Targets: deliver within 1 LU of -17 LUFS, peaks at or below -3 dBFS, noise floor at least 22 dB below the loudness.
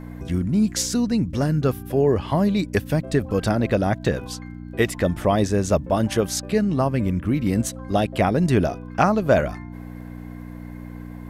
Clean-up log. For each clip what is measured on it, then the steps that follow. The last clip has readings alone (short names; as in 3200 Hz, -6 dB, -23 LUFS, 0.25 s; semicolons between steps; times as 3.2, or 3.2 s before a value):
ticks 31/s; hum 60 Hz; harmonics up to 300 Hz; hum level -33 dBFS; loudness -22.0 LUFS; peak -3.5 dBFS; loudness target -17.0 LUFS
-> de-click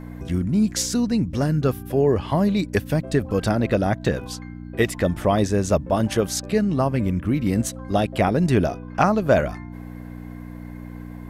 ticks 0.18/s; hum 60 Hz; harmonics up to 300 Hz; hum level -33 dBFS
-> de-hum 60 Hz, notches 5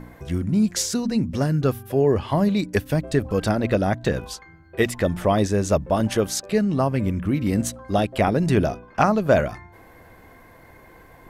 hum none; loudness -22.5 LUFS; peak -3.5 dBFS; loudness target -17.0 LUFS
-> gain +5.5 dB; limiter -3 dBFS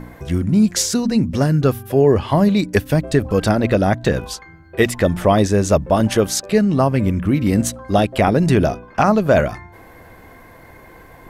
loudness -17.0 LUFS; peak -3.0 dBFS; noise floor -43 dBFS